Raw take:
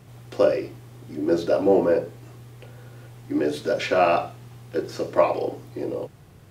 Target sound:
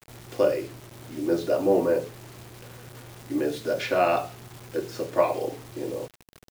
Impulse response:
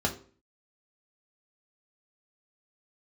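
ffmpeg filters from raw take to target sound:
-af "acrusher=bits=6:mix=0:aa=0.000001,volume=-3dB"

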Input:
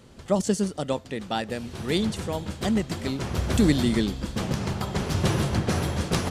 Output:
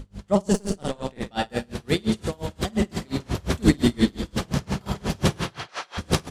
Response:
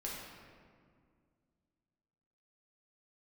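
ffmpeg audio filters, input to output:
-filter_complex "[0:a]aeval=exprs='val(0)+0.0141*(sin(2*PI*50*n/s)+sin(2*PI*2*50*n/s)/2+sin(2*PI*3*50*n/s)/3+sin(2*PI*4*50*n/s)/4+sin(2*PI*5*50*n/s)/5)':channel_layout=same,asplit=3[link_01][link_02][link_03];[link_01]afade=type=out:start_time=5.36:duration=0.02[link_04];[link_02]asuperpass=centerf=2200:order=4:qfactor=0.5,afade=type=in:start_time=5.36:duration=0.02,afade=type=out:start_time=5.97:duration=0.02[link_05];[link_03]afade=type=in:start_time=5.97:duration=0.02[link_06];[link_04][link_05][link_06]amix=inputs=3:normalize=0,aecho=1:1:50|105|165.5|232|305.3:0.631|0.398|0.251|0.158|0.1,asettb=1/sr,asplit=3[link_07][link_08][link_09];[link_07]atrim=end=0.534[link_10];[link_08]atrim=start=0.53:end=1.3,asetpts=PTS-STARTPTS,afade=type=in:duration=0.004:curve=qsin,afade=type=out:start_time=0.766:duration=0.004:curve=qsin,aeval=exprs='0.299*(cos(1*acos(clip(val(0)/0.299,-1,1)))-cos(1*PI/2))+0.0376*(cos(6*acos(clip(val(0)/0.299,-1,1)))-cos(6*PI/2))':channel_layout=same[link_11];[link_09]atrim=start=1.296[link_12];[link_10][link_11]acrossfade=duration=0.004:curve1=hsin:curve2=qsin[link_13];[link_13][link_12]acrossfade=duration=0.004:curve1=qsin:curve2=hsin,aeval=exprs='val(0)*pow(10,-30*(0.5-0.5*cos(2*PI*5.7*n/s))/20)':channel_layout=same,volume=4.5dB"

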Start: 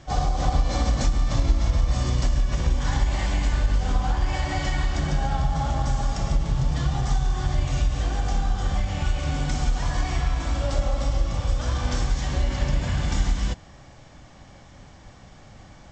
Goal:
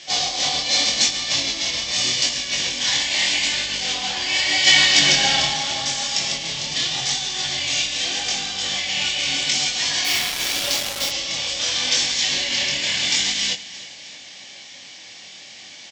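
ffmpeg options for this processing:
ffmpeg -i in.wav -filter_complex "[0:a]asplit=3[link_01][link_02][link_03];[link_01]afade=type=out:start_time=4.66:duration=0.02[link_04];[link_02]acontrast=87,afade=type=in:start_time=4.66:duration=0.02,afade=type=out:start_time=5.52:duration=0.02[link_05];[link_03]afade=type=in:start_time=5.52:duration=0.02[link_06];[link_04][link_05][link_06]amix=inputs=3:normalize=0,flanger=delay=19.5:depth=7.5:speed=0.82,aexciter=amount=7.8:drive=7.6:freq=2000,highpass=280,lowpass=5000,aecho=1:1:312|624|936|1248:0.133|0.0693|0.0361|0.0188,asplit=3[link_07][link_08][link_09];[link_07]afade=type=out:start_time=10.04:duration=0.02[link_10];[link_08]acrusher=bits=3:mix=0:aa=0.5,afade=type=in:start_time=10.04:duration=0.02,afade=type=out:start_time=11.1:duration=0.02[link_11];[link_09]afade=type=in:start_time=11.1:duration=0.02[link_12];[link_10][link_11][link_12]amix=inputs=3:normalize=0,volume=2dB" out.wav

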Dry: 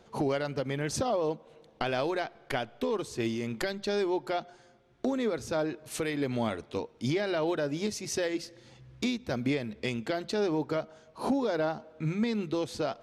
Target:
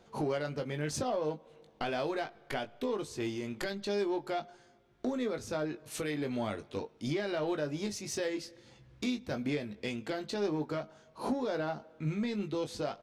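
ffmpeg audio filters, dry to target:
ffmpeg -i in.wav -filter_complex "[0:a]asplit=2[link_01][link_02];[link_02]asoftclip=type=tanh:threshold=-29.5dB,volume=-6dB[link_03];[link_01][link_03]amix=inputs=2:normalize=0,asplit=2[link_04][link_05];[link_05]adelay=20,volume=-7dB[link_06];[link_04][link_06]amix=inputs=2:normalize=0,volume=-7dB" out.wav

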